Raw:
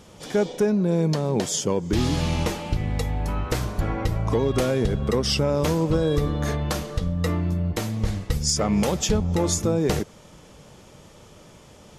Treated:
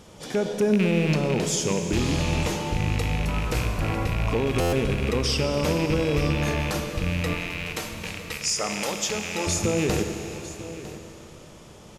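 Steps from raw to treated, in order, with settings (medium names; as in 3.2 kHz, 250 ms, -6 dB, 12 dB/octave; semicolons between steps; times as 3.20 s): rattle on loud lows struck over -22 dBFS, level -19 dBFS; 7.33–9.47 s: high-pass 850 Hz 6 dB/octave; peak limiter -15.5 dBFS, peak gain reduction 5.5 dB; delay 954 ms -15.5 dB; Schroeder reverb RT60 3.5 s, combs from 26 ms, DRR 5.5 dB; buffer glitch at 4.60 s, samples 512, times 10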